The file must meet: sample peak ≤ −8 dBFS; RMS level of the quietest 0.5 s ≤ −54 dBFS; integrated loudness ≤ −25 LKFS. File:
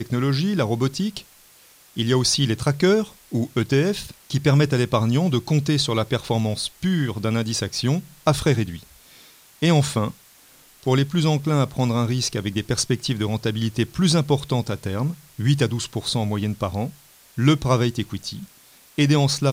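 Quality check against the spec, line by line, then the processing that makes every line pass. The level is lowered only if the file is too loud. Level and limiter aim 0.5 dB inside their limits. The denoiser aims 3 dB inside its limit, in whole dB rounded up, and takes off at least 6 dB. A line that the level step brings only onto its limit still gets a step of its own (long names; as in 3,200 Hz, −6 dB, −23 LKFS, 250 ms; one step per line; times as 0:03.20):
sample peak −5.0 dBFS: out of spec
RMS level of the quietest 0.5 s −52 dBFS: out of spec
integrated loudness −22.0 LKFS: out of spec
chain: level −3.5 dB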